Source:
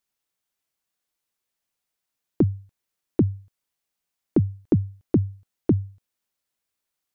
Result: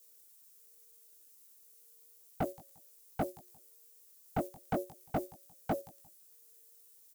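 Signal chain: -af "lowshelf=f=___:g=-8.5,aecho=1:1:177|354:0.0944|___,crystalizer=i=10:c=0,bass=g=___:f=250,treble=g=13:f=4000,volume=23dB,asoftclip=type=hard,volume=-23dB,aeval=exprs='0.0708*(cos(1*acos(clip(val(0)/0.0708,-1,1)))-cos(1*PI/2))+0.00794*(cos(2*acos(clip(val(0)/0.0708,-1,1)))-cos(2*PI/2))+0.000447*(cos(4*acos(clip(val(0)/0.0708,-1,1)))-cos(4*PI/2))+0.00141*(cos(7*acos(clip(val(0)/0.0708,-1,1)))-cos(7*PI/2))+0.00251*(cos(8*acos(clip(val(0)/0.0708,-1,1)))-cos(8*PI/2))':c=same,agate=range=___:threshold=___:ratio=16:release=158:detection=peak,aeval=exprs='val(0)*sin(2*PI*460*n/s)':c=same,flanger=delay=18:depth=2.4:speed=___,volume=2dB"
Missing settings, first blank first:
63, 0.0293, -10, -8dB, -36dB, 0.35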